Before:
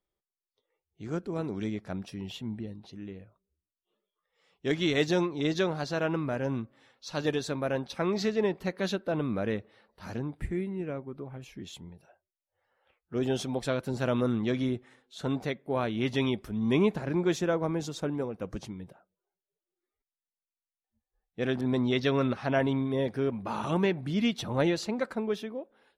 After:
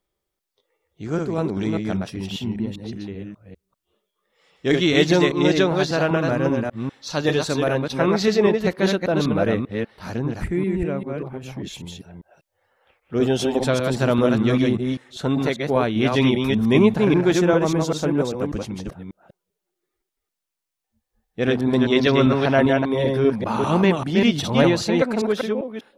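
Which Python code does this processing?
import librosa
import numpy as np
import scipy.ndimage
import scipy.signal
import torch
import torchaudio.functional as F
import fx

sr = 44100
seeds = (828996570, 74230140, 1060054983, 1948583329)

y = fx.reverse_delay(x, sr, ms=197, wet_db=-3)
y = y * 10.0 ** (8.5 / 20.0)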